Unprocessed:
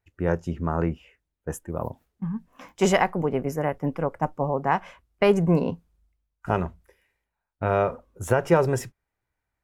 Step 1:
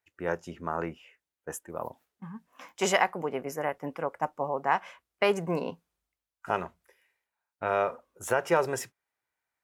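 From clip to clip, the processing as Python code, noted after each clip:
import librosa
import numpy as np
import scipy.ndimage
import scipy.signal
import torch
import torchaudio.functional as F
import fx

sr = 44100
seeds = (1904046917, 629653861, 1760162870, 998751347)

y = fx.highpass(x, sr, hz=790.0, slope=6)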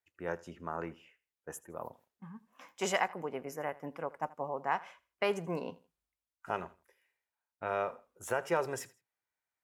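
y = fx.echo_feedback(x, sr, ms=81, feedback_pct=29, wet_db=-20.5)
y = y * librosa.db_to_amplitude(-6.5)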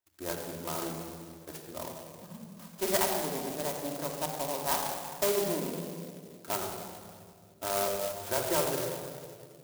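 y = fx.room_shoebox(x, sr, seeds[0], volume_m3=4000.0, walls='mixed', distance_m=2.8)
y = fx.clock_jitter(y, sr, seeds[1], jitter_ms=0.13)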